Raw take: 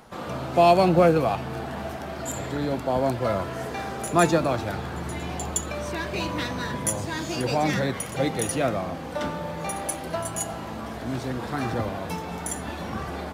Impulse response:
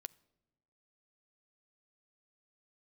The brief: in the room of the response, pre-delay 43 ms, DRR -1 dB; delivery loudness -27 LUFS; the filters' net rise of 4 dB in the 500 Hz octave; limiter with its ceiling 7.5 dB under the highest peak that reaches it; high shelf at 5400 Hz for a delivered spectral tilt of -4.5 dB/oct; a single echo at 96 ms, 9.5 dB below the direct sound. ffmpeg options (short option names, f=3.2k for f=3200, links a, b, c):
-filter_complex "[0:a]equalizer=f=500:t=o:g=5,highshelf=f=5.4k:g=6,alimiter=limit=-11dB:level=0:latency=1,aecho=1:1:96:0.335,asplit=2[a][b];[1:a]atrim=start_sample=2205,adelay=43[c];[b][c]afir=irnorm=-1:irlink=0,volume=6dB[d];[a][d]amix=inputs=2:normalize=0,volume=-5.5dB"